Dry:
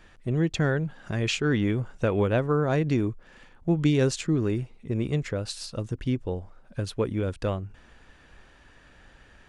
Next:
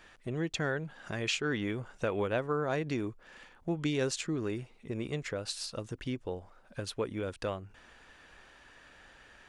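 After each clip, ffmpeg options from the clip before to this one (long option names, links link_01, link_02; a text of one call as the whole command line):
ffmpeg -i in.wav -filter_complex "[0:a]lowshelf=frequency=280:gain=-11.5,asplit=2[link_01][link_02];[link_02]acompressor=threshold=-38dB:ratio=6,volume=0.5dB[link_03];[link_01][link_03]amix=inputs=2:normalize=0,volume=-5.5dB" out.wav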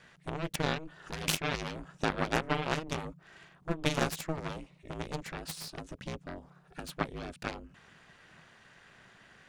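ffmpeg -i in.wav -af "aeval=exprs='0.133*(cos(1*acos(clip(val(0)/0.133,-1,1)))-cos(1*PI/2))+0.0335*(cos(4*acos(clip(val(0)/0.133,-1,1)))-cos(4*PI/2))+0.0335*(cos(7*acos(clip(val(0)/0.133,-1,1)))-cos(7*PI/2))':channel_layout=same,aeval=exprs='val(0)*sin(2*PI*160*n/s)':channel_layout=same,volume=4dB" out.wav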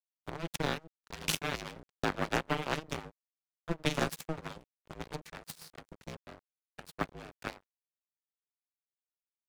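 ffmpeg -i in.wav -filter_complex "[0:a]acrossover=split=270|1200|2900[link_01][link_02][link_03][link_04];[link_04]acompressor=mode=upward:threshold=-54dB:ratio=2.5[link_05];[link_01][link_02][link_03][link_05]amix=inputs=4:normalize=0,aeval=exprs='sgn(val(0))*max(abs(val(0))-0.00891,0)':channel_layout=same" out.wav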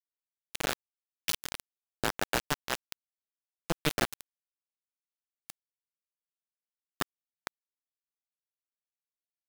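ffmpeg -i in.wav -af "acrusher=bits=3:mix=0:aa=0.000001" out.wav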